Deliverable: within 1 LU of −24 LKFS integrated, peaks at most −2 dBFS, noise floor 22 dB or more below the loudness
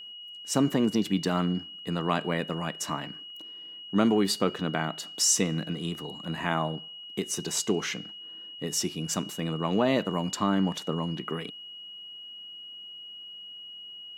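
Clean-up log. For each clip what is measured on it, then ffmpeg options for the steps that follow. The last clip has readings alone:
interfering tone 2,900 Hz; level of the tone −41 dBFS; integrated loudness −28.5 LKFS; sample peak −8.0 dBFS; target loudness −24.0 LKFS
→ -af "bandreject=frequency=2900:width=30"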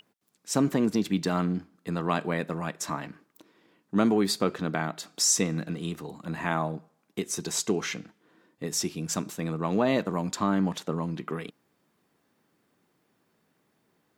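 interfering tone none found; integrated loudness −28.5 LKFS; sample peak −8.0 dBFS; target loudness −24.0 LKFS
→ -af "volume=4.5dB"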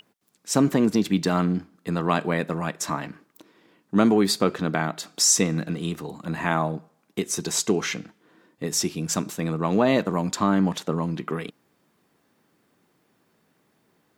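integrated loudness −24.5 LKFS; sample peak −3.5 dBFS; background noise floor −68 dBFS

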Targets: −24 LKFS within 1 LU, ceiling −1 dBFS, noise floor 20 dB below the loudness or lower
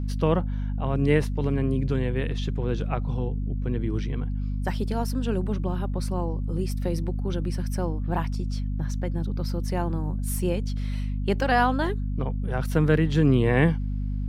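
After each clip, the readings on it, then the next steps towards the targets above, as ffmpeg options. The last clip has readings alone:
mains hum 50 Hz; hum harmonics up to 250 Hz; level of the hum −25 dBFS; integrated loudness −26.5 LKFS; sample peak −7.0 dBFS; target loudness −24.0 LKFS
→ -af "bandreject=frequency=50:width_type=h:width=4,bandreject=frequency=100:width_type=h:width=4,bandreject=frequency=150:width_type=h:width=4,bandreject=frequency=200:width_type=h:width=4,bandreject=frequency=250:width_type=h:width=4"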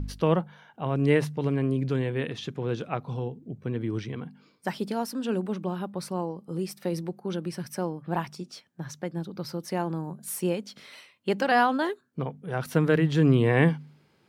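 mains hum none found; integrated loudness −28.5 LKFS; sample peak −8.0 dBFS; target loudness −24.0 LKFS
→ -af "volume=4.5dB"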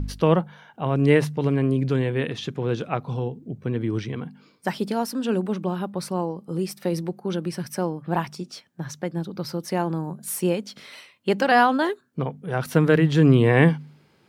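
integrated loudness −24.0 LKFS; sample peak −3.5 dBFS; background noise floor −60 dBFS

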